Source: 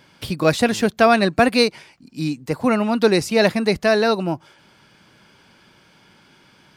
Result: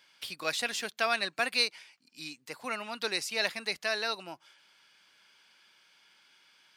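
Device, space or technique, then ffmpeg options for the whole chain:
filter by subtraction: -filter_complex "[0:a]asplit=2[a][b];[b]lowpass=2.9k,volume=-1[c];[a][c]amix=inputs=2:normalize=0,volume=-8dB"

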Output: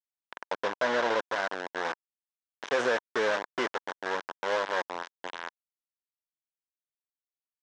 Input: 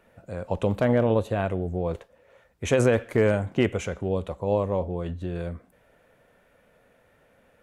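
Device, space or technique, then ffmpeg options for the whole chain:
hand-held game console: -filter_complex "[0:a]acrusher=bits=3:mix=0:aa=0.000001,highpass=420,equalizer=f=980:t=q:w=4:g=6,equalizer=f=1.6k:t=q:w=4:g=7,equalizer=f=2.5k:t=q:w=4:g=-4,equalizer=f=4.5k:t=q:w=4:g=-6,lowpass=f=5.4k:w=0.5412,lowpass=f=5.4k:w=1.3066,asettb=1/sr,asplit=3[a][b][c];[a]atrim=end=0.524[d];[b]atrim=start=0.52:end=1.19,asetpts=PTS-STARTPTS,afade=t=in:d=0.004:c=qsin,afade=t=out:st=0.666:d=0.004:c=qsin,lowpass=7.7k[e];[c]atrim=start=1.186[f];[d][e]acrossfade=d=0.004:c1=hsin:c2=qsin[g];[g][f]acrossfade=d=0.004:c1=qsin:c2=hsin,lowshelf=f=110:g=-4.5,volume=-5dB"

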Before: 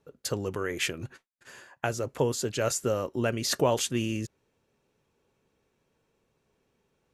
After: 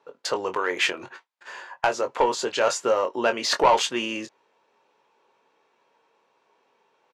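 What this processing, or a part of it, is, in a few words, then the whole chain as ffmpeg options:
intercom: -filter_complex "[0:a]highpass=490,lowpass=4.5k,equalizer=f=940:t=o:w=0.45:g=9,asoftclip=type=tanh:threshold=-19.5dB,asplit=2[a][b];[b]adelay=22,volume=-8dB[c];[a][c]amix=inputs=2:normalize=0,volume=8.5dB"

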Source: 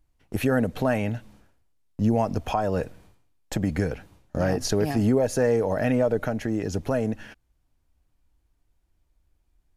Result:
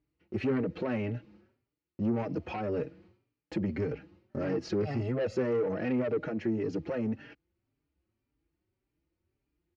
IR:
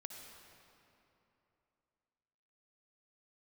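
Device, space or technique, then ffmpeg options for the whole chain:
barber-pole flanger into a guitar amplifier: -filter_complex "[0:a]asettb=1/sr,asplit=3[a][b][c];[a]atrim=end=4.824[d];[b]atrim=start=4.82:end=5.37,asetpts=PTS-STARTPTS,afade=t=in:d=0.004:c=qsin,afade=t=out:st=0.546:d=0.004:c=qsin,aecho=1:1:1.5:0.82,atrim=end_sample=24255[e];[c]atrim=start=5.366[f];[d][e]acrossfade=d=0.004:c1=hsin:c2=qsin[g];[g][f]acrossfade=d=0.004:c1=qsin:c2=hsin,asplit=2[h][i];[i]adelay=4.6,afreqshift=1.8[j];[h][j]amix=inputs=2:normalize=1,asoftclip=type=tanh:threshold=-25dB,highpass=110,equalizer=f=350:t=q:w=4:g=8,equalizer=f=700:t=q:w=4:g=-8,equalizer=f=1k:t=q:w=4:g=-7,equalizer=f=1.6k:t=q:w=4:g=-5,equalizer=f=3.5k:t=q:w=4:g=-10,lowpass=f=4.1k:w=0.5412,lowpass=f=4.1k:w=1.3066"

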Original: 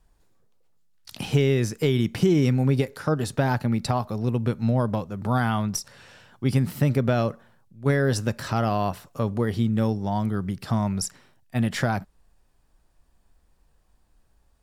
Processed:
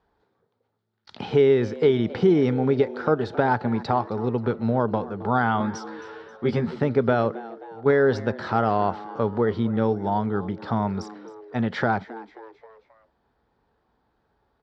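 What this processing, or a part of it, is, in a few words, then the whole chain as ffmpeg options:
frequency-shifting delay pedal into a guitar cabinet: -filter_complex "[0:a]asplit=5[a][b][c][d][e];[b]adelay=267,afreqshift=110,volume=-18.5dB[f];[c]adelay=534,afreqshift=220,volume=-24.9dB[g];[d]adelay=801,afreqshift=330,volume=-31.3dB[h];[e]adelay=1068,afreqshift=440,volume=-37.6dB[i];[a][f][g][h][i]amix=inputs=5:normalize=0,highpass=100,equalizer=f=140:t=q:w=4:g=-7,equalizer=f=430:t=q:w=4:g=8,equalizer=f=850:t=q:w=4:g=7,equalizer=f=1.4k:t=q:w=4:g=5,equalizer=f=2.7k:t=q:w=4:g=-7,lowpass=f=4k:w=0.5412,lowpass=f=4k:w=1.3066,asettb=1/sr,asplit=3[j][k][l];[j]atrim=end=5.594[m];[k]atrim=start=5.59:end=6.75,asetpts=PTS-STARTPTS,afade=t=in:d=0.004:c=qsin,afade=t=out:st=1.156:d=0.004:c=qsin,asplit=2[n][o];[o]adelay=13,volume=-2dB[p];[n][p]amix=inputs=2:normalize=0,atrim=end_sample=51156[q];[l]atrim=start=6.746[r];[m][q]acrossfade=d=0.004:c1=hsin:c2=qsin[s];[s][r]acrossfade=d=0.004:c1=qsin:c2=hsin"

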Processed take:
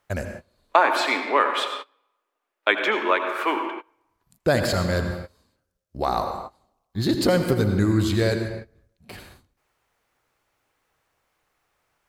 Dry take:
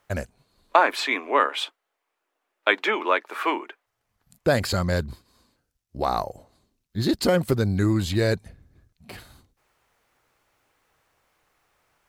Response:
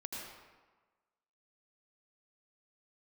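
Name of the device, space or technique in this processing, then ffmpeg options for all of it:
keyed gated reverb: -filter_complex "[0:a]asplit=3[a][b][c];[1:a]atrim=start_sample=2205[d];[b][d]afir=irnorm=-1:irlink=0[e];[c]apad=whole_len=532947[f];[e][f]sidechaingate=range=-24dB:threshold=-49dB:ratio=16:detection=peak,volume=1dB[g];[a][g]amix=inputs=2:normalize=0,volume=-4dB"

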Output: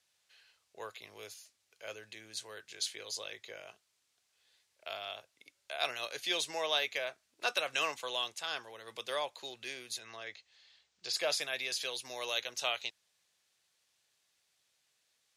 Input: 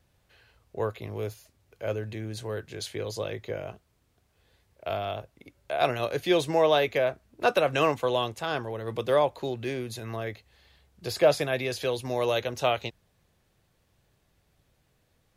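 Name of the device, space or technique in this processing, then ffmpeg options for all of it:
piezo pickup straight into a mixer: -filter_complex "[0:a]asplit=3[a][b][c];[a]afade=t=out:st=9.98:d=0.02[d];[b]lowpass=f=7.3k:w=0.5412,lowpass=f=7.3k:w=1.3066,afade=t=in:st=9.98:d=0.02,afade=t=out:st=11.12:d=0.02[e];[c]afade=t=in:st=11.12:d=0.02[f];[d][e][f]amix=inputs=3:normalize=0,lowpass=6.7k,aderivative,volume=6.5dB"

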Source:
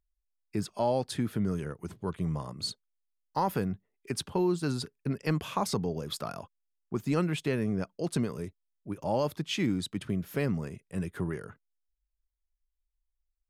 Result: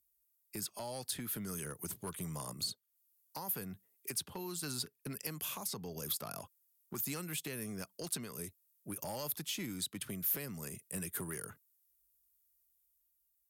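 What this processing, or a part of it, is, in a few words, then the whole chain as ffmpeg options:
FM broadcast chain: -filter_complex "[0:a]highpass=59,dynaudnorm=f=140:g=11:m=3dB,acrossover=split=140|920|4600[a][b][c][d];[a]acompressor=threshold=-45dB:ratio=4[e];[b]acompressor=threshold=-35dB:ratio=4[f];[c]acompressor=threshold=-39dB:ratio=4[g];[d]acompressor=threshold=-53dB:ratio=4[h];[e][f][g][h]amix=inputs=4:normalize=0,aemphasis=mode=production:type=50fm,alimiter=level_in=1dB:limit=-24dB:level=0:latency=1:release=483,volume=-1dB,asoftclip=type=hard:threshold=-29dB,lowpass=f=15k:w=0.5412,lowpass=f=15k:w=1.3066,aemphasis=mode=production:type=50fm,volume=-6dB"

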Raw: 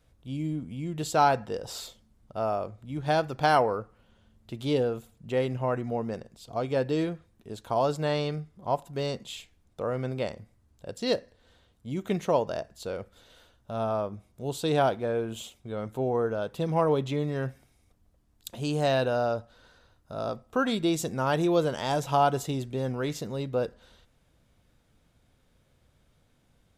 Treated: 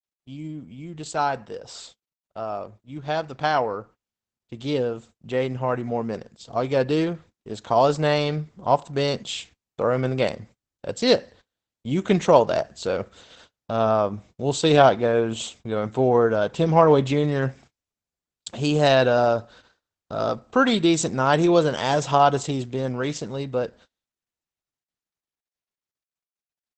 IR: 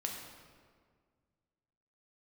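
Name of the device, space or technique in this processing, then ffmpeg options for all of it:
video call: -af "highpass=f=140:p=1,equalizer=f=470:w=0.74:g=-2,dynaudnorm=f=990:g=11:m=14dB,agate=range=-35dB:threshold=-46dB:ratio=16:detection=peak" -ar 48000 -c:a libopus -b:a 12k

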